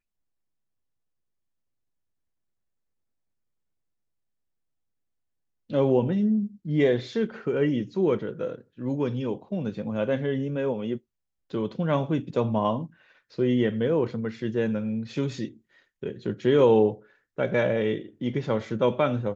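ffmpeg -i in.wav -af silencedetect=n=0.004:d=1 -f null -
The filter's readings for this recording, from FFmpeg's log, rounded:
silence_start: 0.00
silence_end: 5.70 | silence_duration: 5.70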